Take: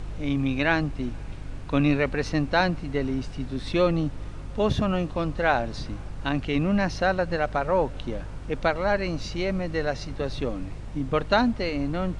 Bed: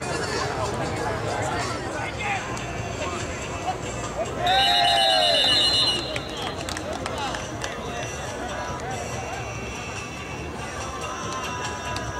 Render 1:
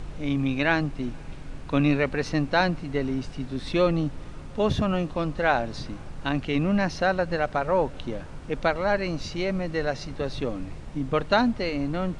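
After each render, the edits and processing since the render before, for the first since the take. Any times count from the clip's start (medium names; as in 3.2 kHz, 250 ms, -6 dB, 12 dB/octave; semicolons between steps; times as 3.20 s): de-hum 50 Hz, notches 2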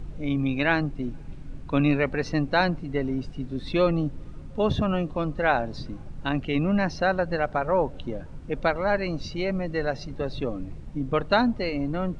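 noise reduction 10 dB, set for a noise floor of -39 dBFS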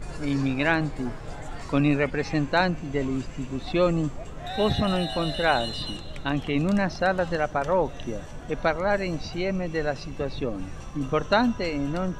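add bed -14.5 dB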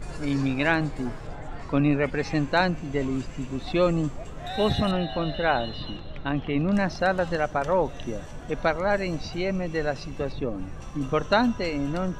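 1.27–2.04 s: low-pass 2.2 kHz 6 dB/octave; 4.91–6.73 s: distance through air 230 m; 10.32–10.82 s: peaking EQ 6.5 kHz -7 dB 2.9 oct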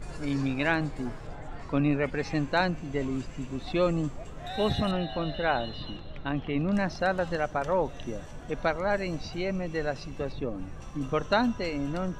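trim -3.5 dB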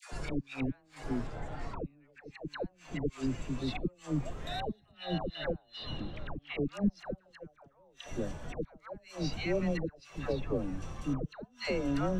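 inverted gate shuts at -19 dBFS, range -37 dB; phase dispersion lows, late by 125 ms, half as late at 720 Hz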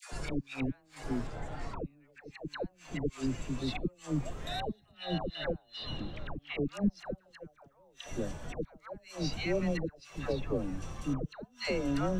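treble shelf 5.1 kHz +5.5 dB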